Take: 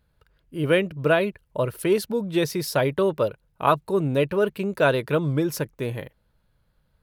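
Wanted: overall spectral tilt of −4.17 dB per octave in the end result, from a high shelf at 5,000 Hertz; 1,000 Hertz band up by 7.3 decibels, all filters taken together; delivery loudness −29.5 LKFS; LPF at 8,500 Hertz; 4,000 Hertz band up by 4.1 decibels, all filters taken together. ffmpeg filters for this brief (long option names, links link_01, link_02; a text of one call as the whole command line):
ffmpeg -i in.wav -af "lowpass=8500,equalizer=frequency=1000:width_type=o:gain=9,equalizer=frequency=4000:width_type=o:gain=7.5,highshelf=frequency=5000:gain=-6,volume=-8dB" out.wav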